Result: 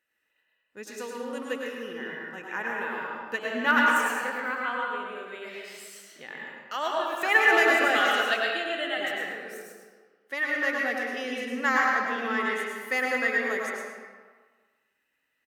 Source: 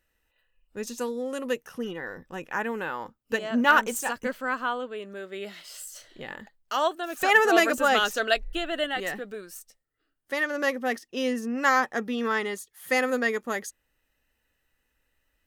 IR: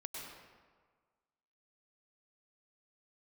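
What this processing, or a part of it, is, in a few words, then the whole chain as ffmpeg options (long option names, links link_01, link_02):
PA in a hall: -filter_complex "[0:a]highpass=190,equalizer=frequency=2000:width_type=o:width=1.3:gain=7,aecho=1:1:110:0.316[link_01];[1:a]atrim=start_sample=2205[link_02];[link_01][link_02]afir=irnorm=-1:irlink=0,volume=-2.5dB"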